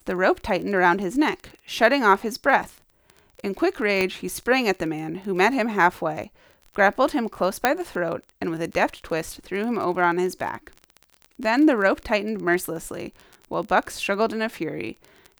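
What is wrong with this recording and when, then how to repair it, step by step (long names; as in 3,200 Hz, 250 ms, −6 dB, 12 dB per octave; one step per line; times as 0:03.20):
surface crackle 24 per second −30 dBFS
0:04.01: click −9 dBFS
0:07.65: click −3 dBFS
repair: click removal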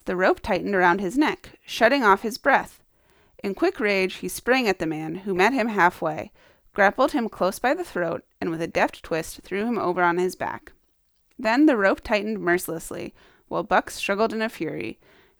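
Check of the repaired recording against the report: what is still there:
none of them is left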